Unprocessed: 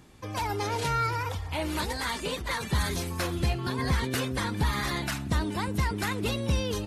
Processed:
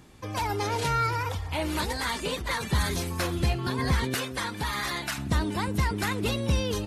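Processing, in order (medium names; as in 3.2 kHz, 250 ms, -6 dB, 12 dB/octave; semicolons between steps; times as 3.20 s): 4.14–5.18 s: bass shelf 370 Hz -10 dB; trim +1.5 dB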